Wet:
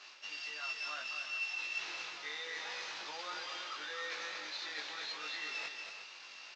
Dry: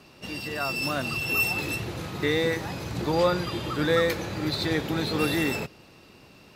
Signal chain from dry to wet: CVSD 32 kbps; HPF 1300 Hz 12 dB/oct; reverse; compressor 6:1, threshold -45 dBFS, peak gain reduction 21 dB; reverse; doubler 20 ms -2.5 dB; tapped delay 0.234/0.36 s -6/-10.5 dB; gain +1.5 dB

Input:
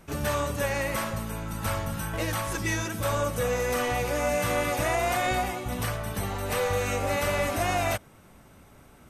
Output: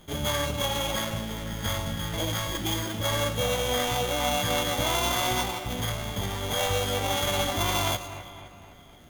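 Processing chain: sample sorter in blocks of 16 samples; split-band echo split 2700 Hz, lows 0.257 s, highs 0.111 s, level -12.5 dB; formant shift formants +3 st

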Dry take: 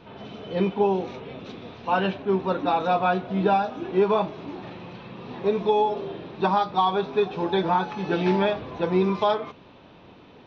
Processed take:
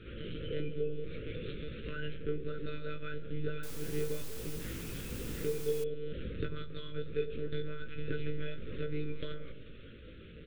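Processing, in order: monotone LPC vocoder at 8 kHz 150 Hz; compressor 4:1, threshold -33 dBFS, peak gain reduction 15 dB; elliptic band-stop 510–1400 Hz, stop band 60 dB; doubler 18 ms -6 dB; dark delay 92 ms, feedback 68%, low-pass 610 Hz, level -10 dB; 3.63–5.84 requantised 8-bit, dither triangular; gain -1 dB

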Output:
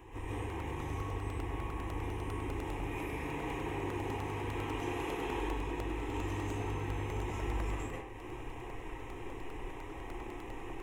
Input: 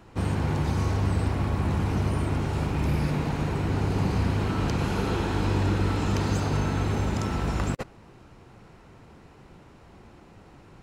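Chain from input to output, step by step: 2.76–5.27 low shelf 110 Hz -9 dB; compressor 6:1, threshold -41 dBFS, peak gain reduction 19 dB; fixed phaser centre 930 Hz, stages 8; reverb RT60 0.70 s, pre-delay 95 ms, DRR -9.5 dB; crackling interface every 0.10 s, samples 64, repeat, from 0.5; gain +1 dB

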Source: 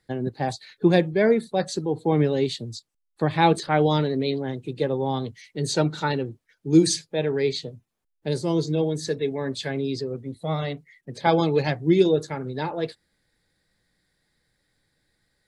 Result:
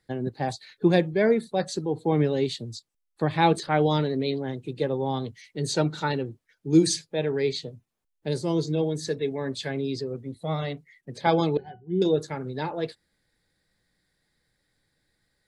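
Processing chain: 11.57–12.02 octave resonator F#, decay 0.14 s; gain -2 dB

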